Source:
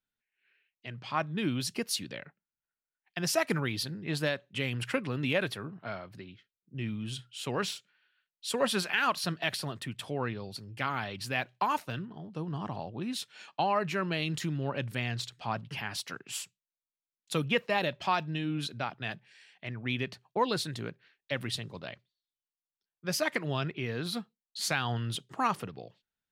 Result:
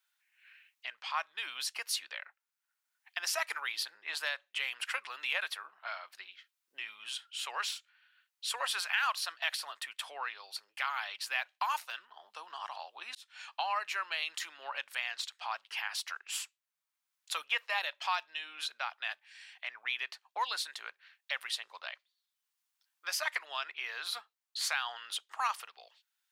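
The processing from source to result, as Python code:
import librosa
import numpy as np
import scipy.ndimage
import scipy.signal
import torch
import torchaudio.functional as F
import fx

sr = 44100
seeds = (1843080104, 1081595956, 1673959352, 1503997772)

y = fx.edit(x, sr, fx.fade_in_span(start_s=13.15, length_s=0.45), tone=tone)
y = scipy.signal.sosfilt(scipy.signal.butter(4, 880.0, 'highpass', fs=sr, output='sos'), y)
y = fx.band_squash(y, sr, depth_pct=40)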